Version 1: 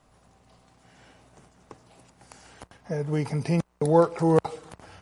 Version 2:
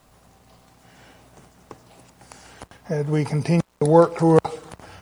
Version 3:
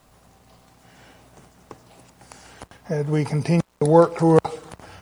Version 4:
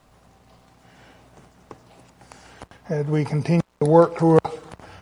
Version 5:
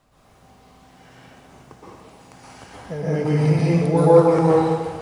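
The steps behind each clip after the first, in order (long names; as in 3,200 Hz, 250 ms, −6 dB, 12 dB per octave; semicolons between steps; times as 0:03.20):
bit reduction 11 bits; level +5 dB
no processing that can be heard
high-shelf EQ 7,300 Hz −9 dB
in parallel at −1 dB: brickwall limiter −12 dBFS, peak gain reduction 10.5 dB; on the sum: dense smooth reverb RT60 1.5 s, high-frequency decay 0.95×, pre-delay 110 ms, DRR −8.5 dB; level −11 dB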